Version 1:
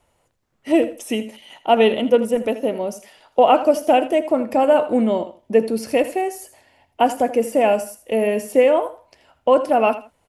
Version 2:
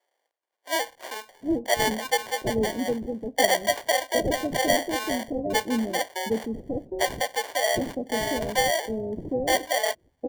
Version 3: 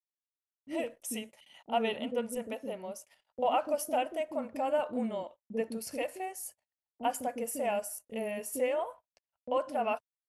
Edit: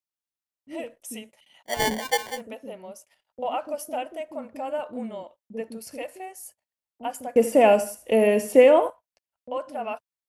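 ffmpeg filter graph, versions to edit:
ffmpeg -i take0.wav -i take1.wav -i take2.wav -filter_complex "[2:a]asplit=3[link_01][link_02][link_03];[link_01]atrim=end=1.81[link_04];[1:a]atrim=start=1.65:end=2.43[link_05];[link_02]atrim=start=2.27:end=7.362[link_06];[0:a]atrim=start=7.358:end=8.902[link_07];[link_03]atrim=start=8.898[link_08];[link_04][link_05]acrossfade=duration=0.16:curve1=tri:curve2=tri[link_09];[link_09][link_06]acrossfade=duration=0.16:curve1=tri:curve2=tri[link_10];[link_10][link_07]acrossfade=duration=0.004:curve1=hsin:curve2=hsin[link_11];[link_11][link_08]acrossfade=duration=0.004:curve1=hsin:curve2=hsin" out.wav

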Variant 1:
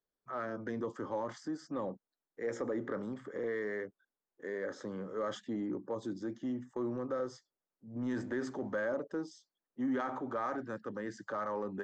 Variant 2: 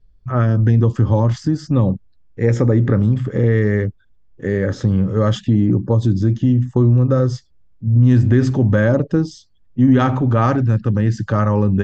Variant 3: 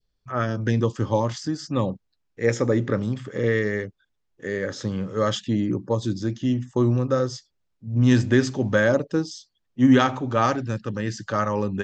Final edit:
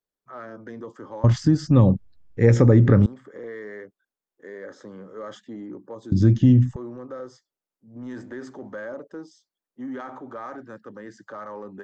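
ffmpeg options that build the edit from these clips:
ffmpeg -i take0.wav -i take1.wav -filter_complex "[1:a]asplit=2[link_01][link_02];[0:a]asplit=3[link_03][link_04][link_05];[link_03]atrim=end=1.242[link_06];[link_01]atrim=start=1.238:end=3.062[link_07];[link_04]atrim=start=3.058:end=6.122[link_08];[link_02]atrim=start=6.118:end=6.762[link_09];[link_05]atrim=start=6.758[link_10];[link_06][link_07]acrossfade=duration=0.004:curve1=hsin:curve2=hsin[link_11];[link_11][link_08]acrossfade=duration=0.004:curve1=hsin:curve2=hsin[link_12];[link_12][link_09]acrossfade=duration=0.004:curve1=hsin:curve2=hsin[link_13];[link_13][link_10]acrossfade=duration=0.004:curve1=hsin:curve2=hsin" out.wav

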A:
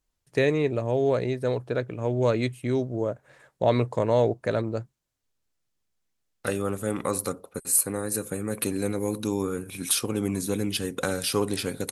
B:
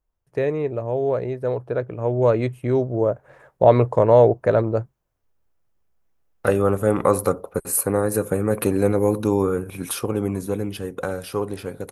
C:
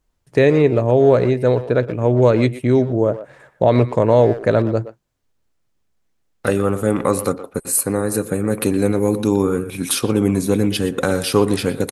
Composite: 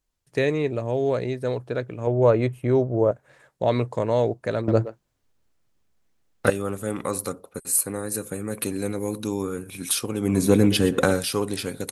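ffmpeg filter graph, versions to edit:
ffmpeg -i take0.wav -i take1.wav -i take2.wav -filter_complex "[2:a]asplit=2[link_01][link_02];[0:a]asplit=4[link_03][link_04][link_05][link_06];[link_03]atrim=end=2.072[link_07];[1:a]atrim=start=2.068:end=3.112[link_08];[link_04]atrim=start=3.108:end=4.682[link_09];[link_01]atrim=start=4.678:end=6.502[link_10];[link_05]atrim=start=6.498:end=10.45[link_11];[link_02]atrim=start=10.21:end=11.27[link_12];[link_06]atrim=start=11.03[link_13];[link_07][link_08]acrossfade=duration=0.004:curve1=hsin:curve2=hsin[link_14];[link_14][link_09]acrossfade=duration=0.004:curve1=hsin:curve2=hsin[link_15];[link_15][link_10]acrossfade=duration=0.004:curve1=hsin:curve2=hsin[link_16];[link_16][link_11]acrossfade=duration=0.004:curve1=hsin:curve2=hsin[link_17];[link_17][link_12]acrossfade=duration=0.24:curve1=tri:curve2=tri[link_18];[link_18][link_13]acrossfade=duration=0.24:curve1=tri:curve2=tri" out.wav

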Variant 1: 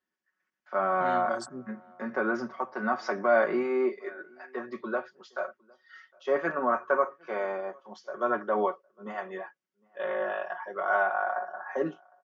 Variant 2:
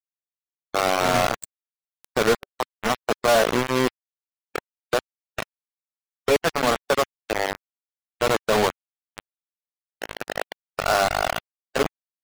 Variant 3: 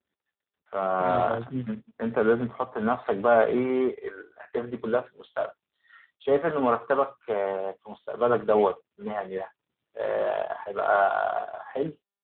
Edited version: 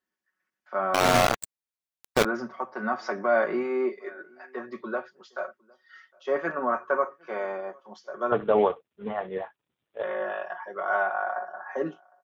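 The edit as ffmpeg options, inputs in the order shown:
ffmpeg -i take0.wav -i take1.wav -i take2.wav -filter_complex "[0:a]asplit=3[link_01][link_02][link_03];[link_01]atrim=end=0.942[link_04];[1:a]atrim=start=0.938:end=2.252[link_05];[link_02]atrim=start=2.248:end=8.322[link_06];[2:a]atrim=start=8.318:end=10.032[link_07];[link_03]atrim=start=10.028[link_08];[link_04][link_05]acrossfade=duration=0.004:curve1=hsin:curve2=hsin[link_09];[link_09][link_06]acrossfade=duration=0.004:curve1=hsin:curve2=hsin[link_10];[link_10][link_07]acrossfade=duration=0.004:curve1=hsin:curve2=hsin[link_11];[link_11][link_08]acrossfade=duration=0.004:curve1=hsin:curve2=hsin" out.wav

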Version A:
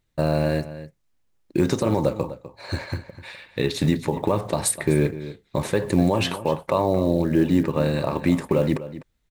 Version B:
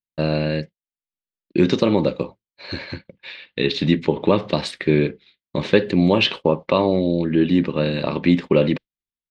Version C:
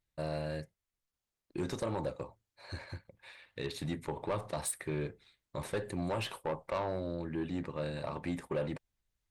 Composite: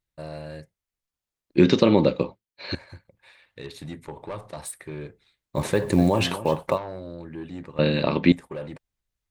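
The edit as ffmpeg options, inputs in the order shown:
ffmpeg -i take0.wav -i take1.wav -i take2.wav -filter_complex "[1:a]asplit=2[link_01][link_02];[2:a]asplit=4[link_03][link_04][link_05][link_06];[link_03]atrim=end=1.572[link_07];[link_01]atrim=start=1.568:end=2.752[link_08];[link_04]atrim=start=2.748:end=5.59[link_09];[0:a]atrim=start=5.53:end=6.79[link_10];[link_05]atrim=start=6.73:end=7.792[link_11];[link_02]atrim=start=7.788:end=8.322[link_12];[link_06]atrim=start=8.318[link_13];[link_07][link_08]acrossfade=duration=0.004:curve1=hsin:curve2=hsin[link_14];[link_14][link_09]acrossfade=duration=0.004:curve1=hsin:curve2=hsin[link_15];[link_15][link_10]acrossfade=duration=0.06:curve1=tri:curve2=tri[link_16];[link_16][link_11]acrossfade=duration=0.06:curve1=tri:curve2=tri[link_17];[link_17][link_12]acrossfade=duration=0.004:curve1=hsin:curve2=hsin[link_18];[link_18][link_13]acrossfade=duration=0.004:curve1=hsin:curve2=hsin" out.wav

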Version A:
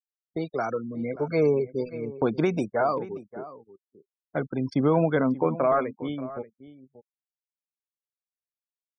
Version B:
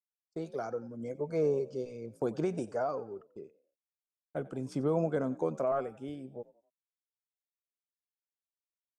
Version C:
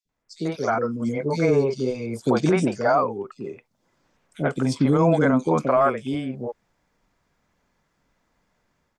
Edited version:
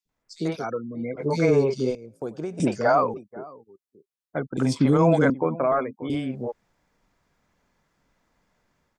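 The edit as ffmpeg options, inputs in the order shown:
ffmpeg -i take0.wav -i take1.wav -i take2.wav -filter_complex "[0:a]asplit=3[link_01][link_02][link_03];[2:a]asplit=5[link_04][link_05][link_06][link_07][link_08];[link_04]atrim=end=0.65[link_09];[link_01]atrim=start=0.59:end=1.23[link_10];[link_05]atrim=start=1.17:end=1.952[link_11];[1:a]atrim=start=1.948:end=2.602[link_12];[link_06]atrim=start=2.598:end=3.142[link_13];[link_02]atrim=start=3.138:end=4.572[link_14];[link_07]atrim=start=4.568:end=5.302[link_15];[link_03]atrim=start=5.298:end=6.102[link_16];[link_08]atrim=start=6.098[link_17];[link_09][link_10]acrossfade=duration=0.06:curve1=tri:curve2=tri[link_18];[link_18][link_11]acrossfade=duration=0.06:curve1=tri:curve2=tri[link_19];[link_19][link_12]acrossfade=duration=0.004:curve1=hsin:curve2=hsin[link_20];[link_20][link_13]acrossfade=duration=0.004:curve1=hsin:curve2=hsin[link_21];[link_21][link_14]acrossfade=duration=0.004:curve1=hsin:curve2=hsin[link_22];[link_22][link_15]acrossfade=duration=0.004:curve1=hsin:curve2=hsin[link_23];[link_23][link_16]acrossfade=duration=0.004:curve1=hsin:curve2=hsin[link_24];[link_24][link_17]acrossfade=duration=0.004:curve1=hsin:curve2=hsin" out.wav

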